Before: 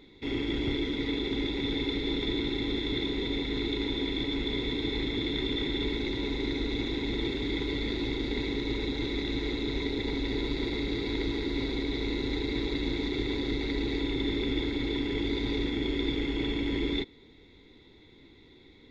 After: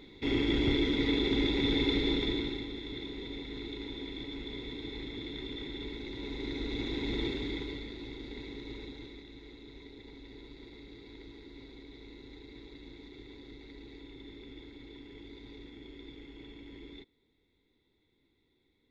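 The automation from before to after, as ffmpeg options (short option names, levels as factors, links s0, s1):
-af "volume=3.16,afade=t=out:st=1.99:d=0.7:silence=0.251189,afade=t=in:st=6.07:d=1.13:silence=0.398107,afade=t=out:st=7.2:d=0.69:silence=0.316228,afade=t=out:st=8.78:d=0.48:silence=0.446684"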